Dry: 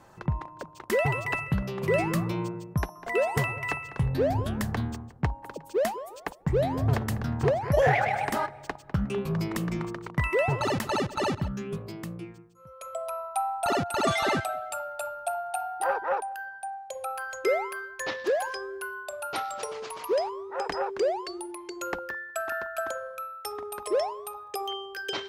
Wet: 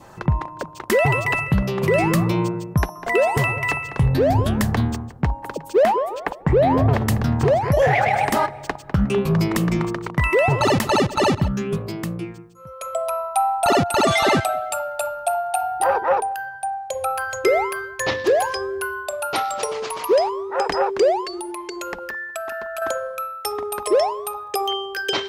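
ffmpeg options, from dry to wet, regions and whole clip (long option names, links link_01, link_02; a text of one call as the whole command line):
ffmpeg -i in.wav -filter_complex "[0:a]asettb=1/sr,asplit=3[link_01][link_02][link_03];[link_01]atrim=end=5.834[link_04];[link_02]atrim=start=5.83:end=6.97,asetpts=PTS-STARTPTS,afade=type=in:duration=0.004:curve=qsin,afade=type=out:start_time=1.136:duration=0.004:curve=qsin,bass=frequency=250:gain=-5,treble=frequency=4000:gain=-14,acontrast=51[link_05];[link_03]atrim=start=6.966[link_06];[link_04][link_05]acrossfade=duration=0.004:curve1=hsin:curve2=qsin[link_07];[link_07][link_06]acrossfade=duration=0.004:curve1=qsin:curve2=hsin,asettb=1/sr,asplit=3[link_08][link_09][link_10];[link_08]atrim=end=15.634[link_11];[link_09]atrim=start=15.63:end=19.07,asetpts=PTS-STARTPTS,afade=type=in:duration=0.004:curve=qsin,afade=type=out:start_time=3.436:duration=0.004:curve=qsin,equalizer=frequency=89:width=0.89:gain=14.5,bandreject=frequency=50:width_type=h:width=6,bandreject=frequency=100:width_type=h:width=6,bandreject=frequency=150:width_type=h:width=6,bandreject=frequency=200:width_type=h:width=6,bandreject=frequency=250:width_type=h:width=6,bandreject=frequency=300:width_type=h:width=6,bandreject=frequency=350:width_type=h:width=6,bandreject=frequency=400:width_type=h:width=6,bandreject=frequency=450:width_type=h:width=6[link_12];[link_10]atrim=start=19.066[link_13];[link_11][link_12]acrossfade=duration=0.004:curve1=hsin:curve2=qsin[link_14];[link_14][link_13]acrossfade=duration=0.004:curve1=qsin:curve2=hsin,asettb=1/sr,asplit=3[link_15][link_16][link_17];[link_15]atrim=end=21.244[link_18];[link_16]atrim=start=21.24:end=22.82,asetpts=PTS-STARTPTS,afade=type=in:duration=0.004:curve=qsin,afade=type=out:start_time=1.576:duration=0.004:curve=qsin,aecho=1:1:4.7:0.37,atrim=end_sample=69678,acompressor=threshold=-36dB:ratio=4:attack=3.2:release=140:knee=1:detection=peak[link_19];[link_17]atrim=start=22.816[link_20];[link_18][link_19]acrossfade=duration=0.004:curve1=hsin:curve2=qsin[link_21];[link_21][link_20]acrossfade=duration=0.004:curve1=qsin:curve2=hsin,adynamicequalizer=threshold=0.00355:dfrequency=1500:dqfactor=4:tfrequency=1500:tqfactor=4:attack=5:release=100:ratio=0.375:range=2.5:mode=cutabove:tftype=bell,alimiter=level_in=18dB:limit=-1dB:release=50:level=0:latency=1,volume=-8dB" out.wav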